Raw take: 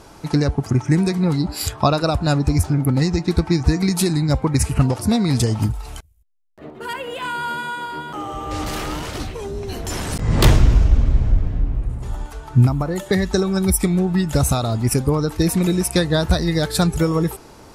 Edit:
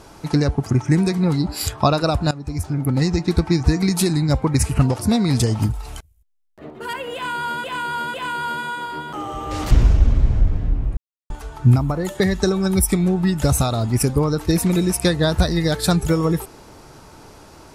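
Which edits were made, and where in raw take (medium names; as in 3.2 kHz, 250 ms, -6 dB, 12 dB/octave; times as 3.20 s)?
2.31–3.07 s: fade in, from -19.5 dB
7.14–7.64 s: loop, 3 plays
8.71–10.62 s: delete
11.88–12.21 s: mute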